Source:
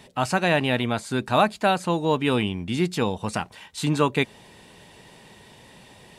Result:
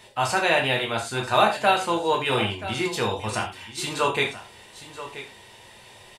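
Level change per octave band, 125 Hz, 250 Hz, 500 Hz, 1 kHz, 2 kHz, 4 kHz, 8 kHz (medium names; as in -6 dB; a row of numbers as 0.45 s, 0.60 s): -5.5 dB, -6.5 dB, 0.0 dB, +2.0 dB, +2.5 dB, +3.5 dB, +3.5 dB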